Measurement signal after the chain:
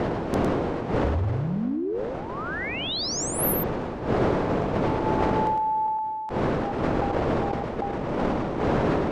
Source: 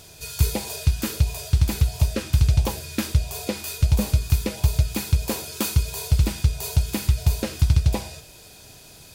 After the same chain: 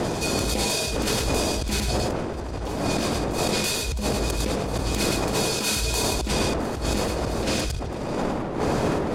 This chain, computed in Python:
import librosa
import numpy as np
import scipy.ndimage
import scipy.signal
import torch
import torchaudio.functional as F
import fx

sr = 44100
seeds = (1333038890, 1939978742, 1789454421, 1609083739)

p1 = fx.dmg_wind(x, sr, seeds[0], corner_hz=510.0, level_db=-25.0)
p2 = scipy.signal.sosfilt(scipy.signal.butter(2, 8200.0, 'lowpass', fs=sr, output='sos'), p1)
p3 = fx.low_shelf(p2, sr, hz=100.0, db=-6.0)
p4 = fx.over_compress(p3, sr, threshold_db=-31.0, ratio=-1.0)
p5 = p4 + fx.echo_single(p4, sr, ms=106, db=-5.5, dry=0)
p6 = fx.sustainer(p5, sr, db_per_s=21.0)
y = F.gain(torch.from_numpy(p6), 2.0).numpy()